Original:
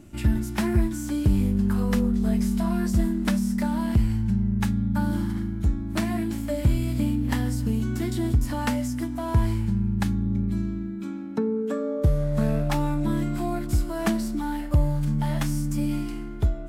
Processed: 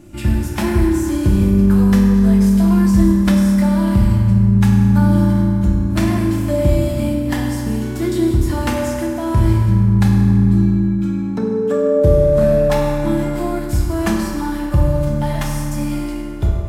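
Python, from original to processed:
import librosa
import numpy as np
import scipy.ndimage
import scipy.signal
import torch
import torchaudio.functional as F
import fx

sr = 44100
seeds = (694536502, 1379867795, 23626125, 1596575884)

y = fx.rev_fdn(x, sr, rt60_s=2.6, lf_ratio=0.75, hf_ratio=0.55, size_ms=17.0, drr_db=-2.0)
y = y * librosa.db_to_amplitude(4.0)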